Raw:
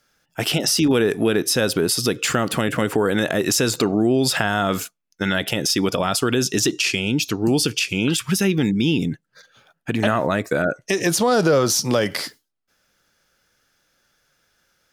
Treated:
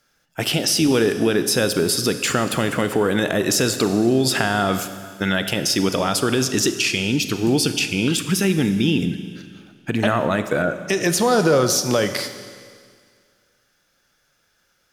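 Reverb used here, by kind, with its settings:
four-comb reverb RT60 2 s, combs from 31 ms, DRR 9.5 dB

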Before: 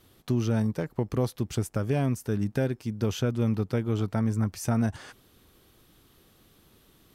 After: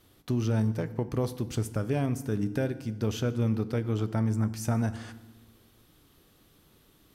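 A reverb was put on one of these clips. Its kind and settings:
feedback delay network reverb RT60 1.1 s, low-frequency decay 1.5×, high-frequency decay 0.8×, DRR 12 dB
level −2 dB

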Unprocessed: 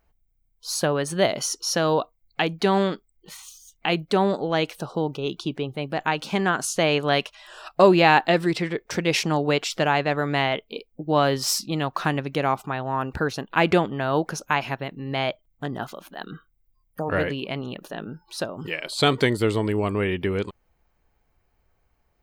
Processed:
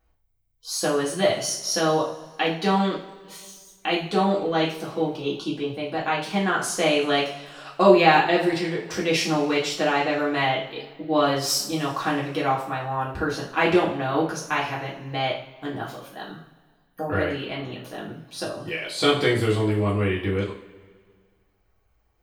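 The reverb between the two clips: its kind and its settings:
coupled-rooms reverb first 0.43 s, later 1.9 s, from −19 dB, DRR −6 dB
level −7 dB

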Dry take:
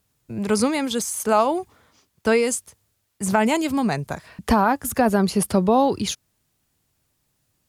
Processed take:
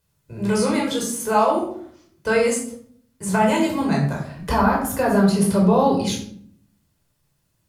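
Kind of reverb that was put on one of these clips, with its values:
rectangular room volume 890 cubic metres, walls furnished, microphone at 5 metres
level −6 dB

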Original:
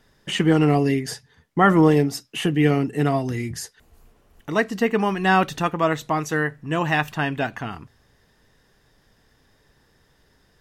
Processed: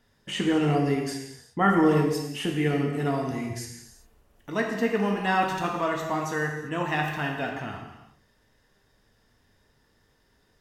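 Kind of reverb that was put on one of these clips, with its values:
reverb whose tail is shaped and stops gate 420 ms falling, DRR 0.5 dB
level −7.5 dB

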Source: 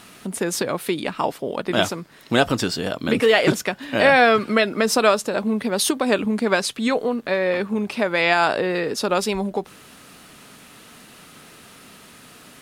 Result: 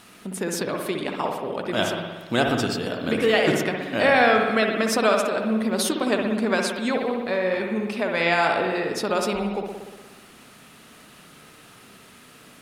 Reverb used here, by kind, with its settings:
spring reverb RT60 1.3 s, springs 59 ms, chirp 60 ms, DRR 2 dB
level −4.5 dB

